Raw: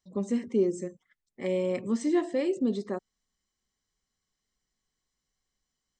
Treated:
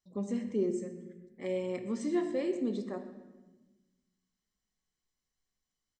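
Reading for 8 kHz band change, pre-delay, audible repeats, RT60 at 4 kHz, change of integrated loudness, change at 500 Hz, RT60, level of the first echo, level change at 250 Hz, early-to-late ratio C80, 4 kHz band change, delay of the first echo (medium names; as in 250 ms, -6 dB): -5.5 dB, 11 ms, 1, 0.90 s, -5.0 dB, -5.0 dB, 1.1 s, -18.5 dB, -4.5 dB, 10.0 dB, -5.5 dB, 124 ms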